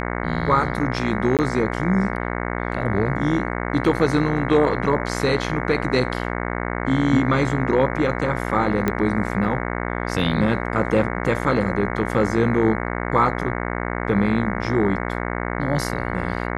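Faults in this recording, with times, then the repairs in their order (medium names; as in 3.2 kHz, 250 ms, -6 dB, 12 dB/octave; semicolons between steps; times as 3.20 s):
buzz 60 Hz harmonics 37 -26 dBFS
1.37–1.39 s: dropout 18 ms
8.88 s: pop -8 dBFS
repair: de-click; de-hum 60 Hz, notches 37; interpolate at 1.37 s, 18 ms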